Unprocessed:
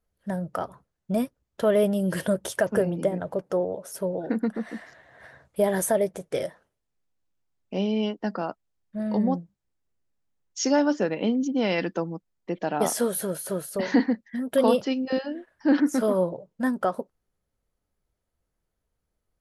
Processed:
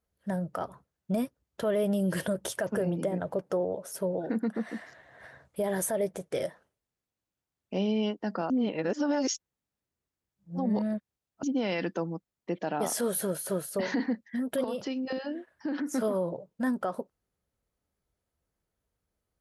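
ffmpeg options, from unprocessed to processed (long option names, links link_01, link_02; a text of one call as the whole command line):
ffmpeg -i in.wav -filter_complex "[0:a]asettb=1/sr,asplit=3[link_01][link_02][link_03];[link_01]atrim=end=14.644[link_04];[link_02]atrim=start=14.64:end=15.91,asetpts=PTS-STARTPTS,afade=type=in:duration=0.004:curve=qsin,afade=type=out:start_time=1.266:duration=0.004:curve=qsin,acompressor=threshold=-27dB:ratio=8:attack=3.2:release=140:knee=1:detection=peak[link_05];[link_03]atrim=start=15.906[link_06];[link_04][link_05]acrossfade=duration=0.004:curve1=hsin:curve2=qsin[link_07];[link_07][link_06]acrossfade=duration=0.004:curve1=qsin:curve2=hsin,asplit=3[link_08][link_09][link_10];[link_08]atrim=end=8.502[link_11];[link_09]atrim=start=8.498:end=11.432,asetpts=PTS-STARTPTS,areverse[link_12];[link_10]atrim=start=11.428[link_13];[link_11][link_12]acrossfade=duration=0.004:curve1=hsin:curve2=hsin[link_14];[link_14][link_13]acrossfade=duration=0.004:curve1=hsin:curve2=hsin,highpass=45,alimiter=limit=-19dB:level=0:latency=1:release=58,volume=-1.5dB" out.wav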